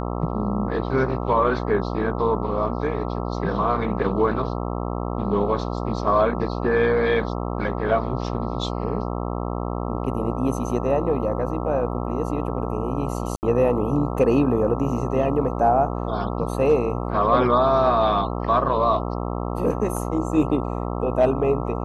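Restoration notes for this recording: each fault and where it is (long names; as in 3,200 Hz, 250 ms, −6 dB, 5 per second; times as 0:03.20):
mains buzz 60 Hz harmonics 22 −27 dBFS
0:13.36–0:13.43: drop-out 69 ms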